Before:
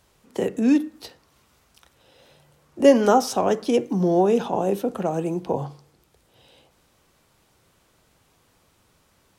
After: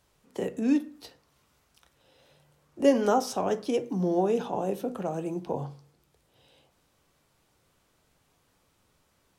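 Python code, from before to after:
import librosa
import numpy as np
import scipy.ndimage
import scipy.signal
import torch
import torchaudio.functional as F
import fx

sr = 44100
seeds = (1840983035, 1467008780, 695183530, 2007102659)

y = fx.room_shoebox(x, sr, seeds[0], volume_m3=120.0, walls='furnished', distance_m=0.34)
y = y * librosa.db_to_amplitude(-7.0)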